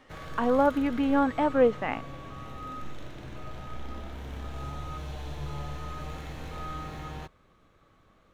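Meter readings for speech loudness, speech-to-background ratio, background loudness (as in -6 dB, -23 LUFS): -25.5 LUFS, 15.0 dB, -40.5 LUFS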